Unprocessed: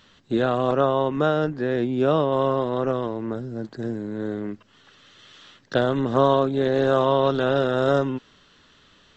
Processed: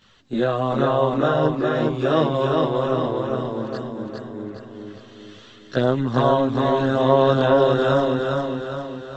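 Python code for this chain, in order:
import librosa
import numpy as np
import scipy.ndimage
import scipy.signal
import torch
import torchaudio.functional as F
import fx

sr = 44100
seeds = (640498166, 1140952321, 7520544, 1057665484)

y = fx.peak_eq(x, sr, hz=5600.0, db=6.5, octaves=1.7, at=(1.73, 2.45))
y = fx.over_compress(y, sr, threshold_db=-37.0, ratio=-1.0, at=(3.72, 4.52))
y = fx.chorus_voices(y, sr, voices=2, hz=0.34, base_ms=19, depth_ms=3.5, mix_pct=65)
y = fx.echo_feedback(y, sr, ms=409, feedback_pct=50, wet_db=-3)
y = F.gain(torch.from_numpy(y), 2.5).numpy()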